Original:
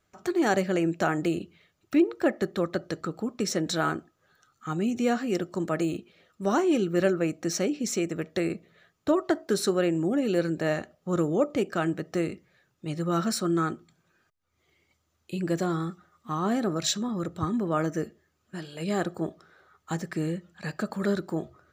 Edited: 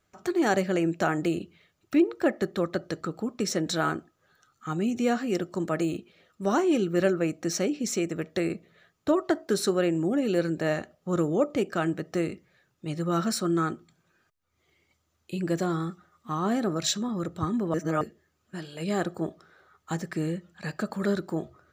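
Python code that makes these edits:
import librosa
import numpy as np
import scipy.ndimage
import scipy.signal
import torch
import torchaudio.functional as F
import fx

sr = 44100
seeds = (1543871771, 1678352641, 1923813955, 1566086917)

y = fx.edit(x, sr, fx.reverse_span(start_s=17.74, length_s=0.27), tone=tone)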